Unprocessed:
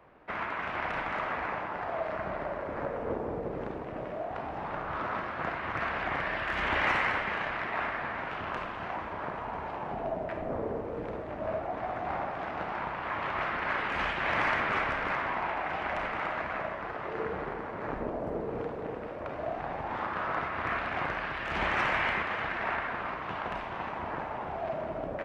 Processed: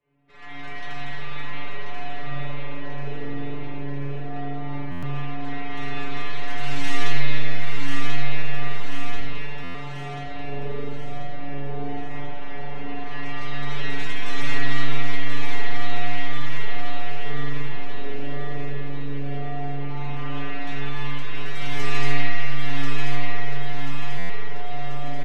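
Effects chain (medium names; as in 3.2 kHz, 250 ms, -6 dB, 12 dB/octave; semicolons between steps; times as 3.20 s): tracing distortion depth 0.26 ms; high-order bell 950 Hz -9.5 dB; band-stop 4.7 kHz, Q 18; inharmonic resonator 140 Hz, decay 0.54 s, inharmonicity 0.002; feedback delay 1037 ms, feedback 56%, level -4.5 dB; level rider gain up to 8.5 dB; 9.16–10.23 s: high-pass 42 Hz 24 dB/octave; spring tank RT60 2.3 s, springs 43 ms, chirp 35 ms, DRR -7.5 dB; buffer glitch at 4.91/9.63/24.18 s, samples 512, times 9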